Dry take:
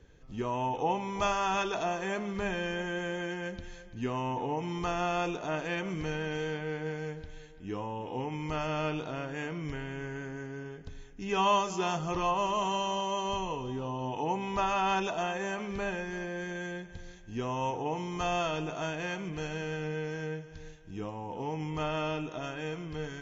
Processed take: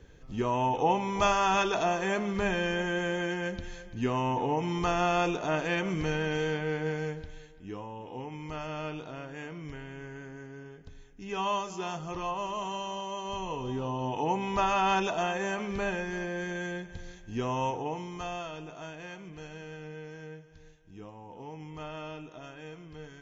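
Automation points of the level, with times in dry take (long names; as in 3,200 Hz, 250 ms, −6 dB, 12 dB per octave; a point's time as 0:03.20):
0:07.02 +4 dB
0:07.86 −4.5 dB
0:13.24 −4.5 dB
0:13.69 +2.5 dB
0:17.59 +2.5 dB
0:18.46 −8 dB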